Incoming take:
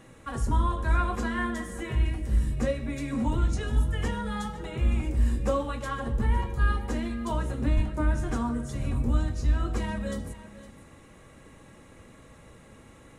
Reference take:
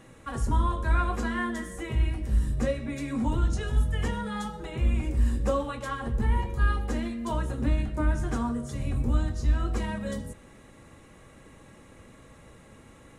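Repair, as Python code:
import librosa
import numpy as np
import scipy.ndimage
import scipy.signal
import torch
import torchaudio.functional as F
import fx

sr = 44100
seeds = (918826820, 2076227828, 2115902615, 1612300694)

y = fx.fix_deplosive(x, sr, at_s=(7.75,))
y = fx.fix_echo_inverse(y, sr, delay_ms=509, level_db=-15.5)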